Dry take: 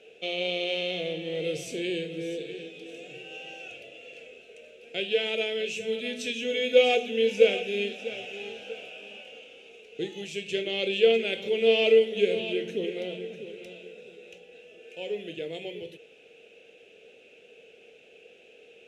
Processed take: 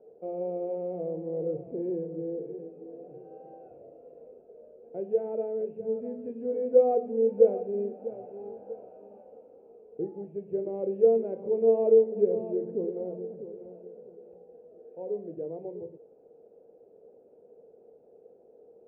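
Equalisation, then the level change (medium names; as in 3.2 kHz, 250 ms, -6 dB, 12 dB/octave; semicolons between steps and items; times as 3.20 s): elliptic low-pass 1 kHz, stop band 80 dB; 0.0 dB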